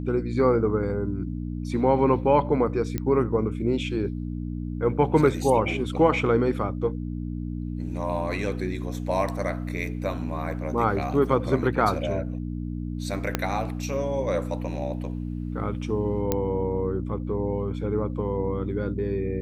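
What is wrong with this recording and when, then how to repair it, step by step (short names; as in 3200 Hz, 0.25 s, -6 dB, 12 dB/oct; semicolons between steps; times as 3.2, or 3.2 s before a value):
hum 60 Hz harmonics 5 -31 dBFS
2.98 pop -14 dBFS
13.35 pop -8 dBFS
16.32 pop -9 dBFS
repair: de-click; de-hum 60 Hz, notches 5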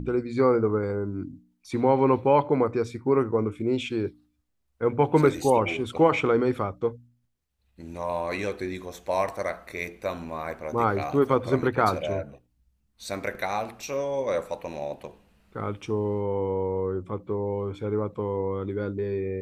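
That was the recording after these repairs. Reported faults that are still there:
13.35 pop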